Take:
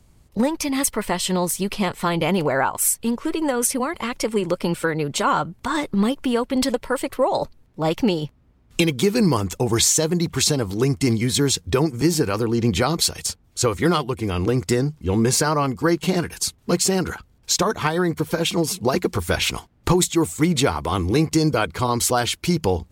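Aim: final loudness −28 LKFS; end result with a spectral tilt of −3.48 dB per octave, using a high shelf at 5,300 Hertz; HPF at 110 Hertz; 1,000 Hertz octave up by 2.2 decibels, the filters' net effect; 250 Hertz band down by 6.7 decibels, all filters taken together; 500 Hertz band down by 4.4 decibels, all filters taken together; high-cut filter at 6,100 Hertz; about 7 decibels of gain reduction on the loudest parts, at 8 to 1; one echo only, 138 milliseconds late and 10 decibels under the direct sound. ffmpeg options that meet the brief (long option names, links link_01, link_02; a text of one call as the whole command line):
ffmpeg -i in.wav -af "highpass=110,lowpass=6100,equalizer=frequency=250:width_type=o:gain=-8.5,equalizer=frequency=500:width_type=o:gain=-3.5,equalizer=frequency=1000:width_type=o:gain=4,highshelf=frequency=5300:gain=3.5,acompressor=threshold=-22dB:ratio=8,aecho=1:1:138:0.316,volume=-1dB" out.wav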